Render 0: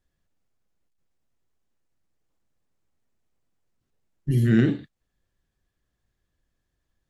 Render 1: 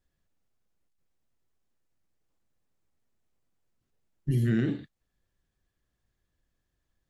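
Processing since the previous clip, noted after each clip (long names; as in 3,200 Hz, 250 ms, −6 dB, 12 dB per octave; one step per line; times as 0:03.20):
downward compressor, threshold −20 dBFS, peak gain reduction 6.5 dB
level −2 dB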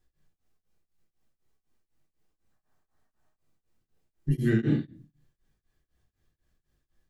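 gain on a spectral selection 0:02.51–0:03.36, 580–1,900 Hz +8 dB
convolution reverb RT60 0.35 s, pre-delay 3 ms, DRR 0 dB
tremolo along a rectified sine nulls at 4 Hz
level +2 dB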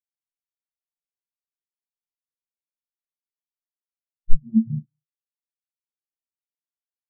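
each half-wave held at its own peak
rectangular room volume 270 cubic metres, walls furnished, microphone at 1.4 metres
every bin expanded away from the loudest bin 4 to 1
level +3.5 dB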